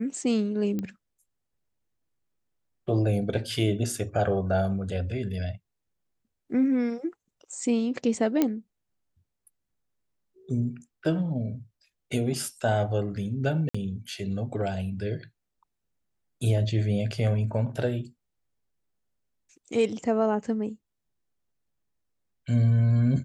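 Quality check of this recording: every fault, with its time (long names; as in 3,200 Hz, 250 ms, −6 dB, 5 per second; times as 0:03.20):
0:00.79: click −19 dBFS
0:08.42: click −10 dBFS
0:13.69–0:13.74: drop-out 55 ms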